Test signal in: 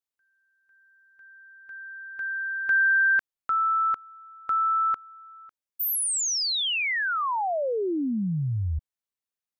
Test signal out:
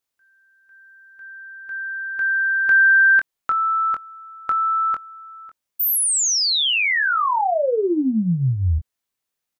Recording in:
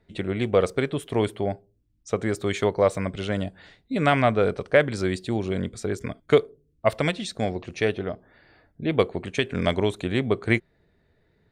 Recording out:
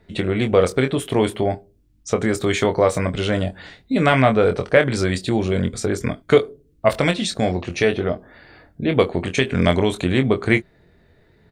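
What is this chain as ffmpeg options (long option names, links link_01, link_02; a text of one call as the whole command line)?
ffmpeg -i in.wav -filter_complex "[0:a]asplit=2[link_01][link_02];[link_02]acompressor=threshold=-33dB:ratio=6:attack=26:release=32:detection=rms,volume=3dB[link_03];[link_01][link_03]amix=inputs=2:normalize=0,asplit=2[link_04][link_05];[link_05]adelay=23,volume=-7dB[link_06];[link_04][link_06]amix=inputs=2:normalize=0,volume=1.5dB" out.wav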